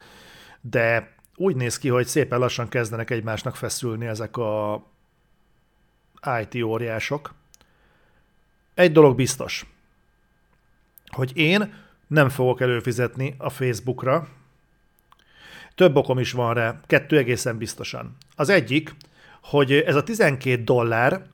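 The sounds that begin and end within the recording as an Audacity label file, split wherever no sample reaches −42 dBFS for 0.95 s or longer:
6.170000	7.610000	sound
8.780000	9.670000	sound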